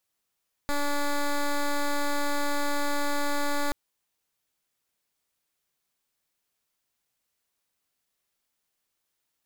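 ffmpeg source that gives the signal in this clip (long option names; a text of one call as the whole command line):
ffmpeg -f lavfi -i "aevalsrc='0.0531*(2*lt(mod(288*t,1),0.1)-1)':duration=3.03:sample_rate=44100" out.wav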